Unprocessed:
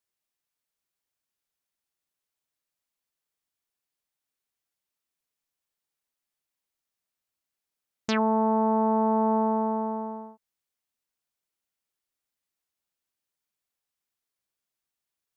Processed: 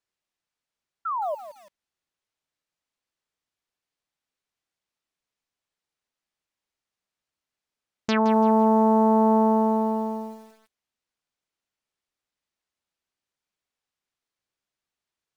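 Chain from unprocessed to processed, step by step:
sound drawn into the spectrogram fall, 0:01.05–0:01.35, 560–1,400 Hz −30 dBFS
high-frequency loss of the air 63 metres
feedback echo at a low word length 168 ms, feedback 35%, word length 8 bits, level −12 dB
level +3 dB

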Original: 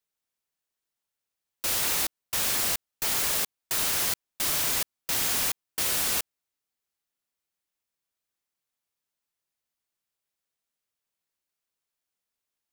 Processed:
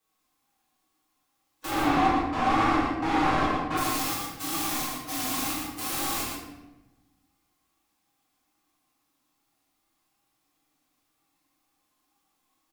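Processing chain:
0:01.70–0:03.78: low-pass filter 1,700 Hz 12 dB per octave
harmonic and percussive parts rebalanced percussive −17 dB
brickwall limiter −37 dBFS, peak gain reduction 17.5 dB
hollow resonant body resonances 290/770/1,100 Hz, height 18 dB, ringing for 90 ms
tape wow and flutter 100 cents
single-tap delay 117 ms −4.5 dB
convolution reverb RT60 1.0 s, pre-delay 6 ms, DRR −8.5 dB
level +6.5 dB

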